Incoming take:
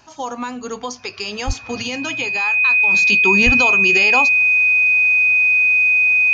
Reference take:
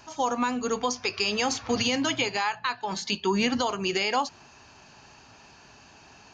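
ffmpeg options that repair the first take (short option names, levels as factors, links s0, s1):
-filter_complex "[0:a]bandreject=f=2500:w=30,asplit=3[s0][s1][s2];[s0]afade=t=out:st=1.46:d=0.02[s3];[s1]highpass=f=140:w=0.5412,highpass=f=140:w=1.3066,afade=t=in:st=1.46:d=0.02,afade=t=out:st=1.58:d=0.02[s4];[s2]afade=t=in:st=1.58:d=0.02[s5];[s3][s4][s5]amix=inputs=3:normalize=0,asplit=3[s6][s7][s8];[s6]afade=t=out:st=3.45:d=0.02[s9];[s7]highpass=f=140:w=0.5412,highpass=f=140:w=1.3066,afade=t=in:st=3.45:d=0.02,afade=t=out:st=3.57:d=0.02[s10];[s8]afade=t=in:st=3.57:d=0.02[s11];[s9][s10][s11]amix=inputs=3:normalize=0,asetnsamples=n=441:p=0,asendcmd='2.94 volume volume -6dB',volume=1"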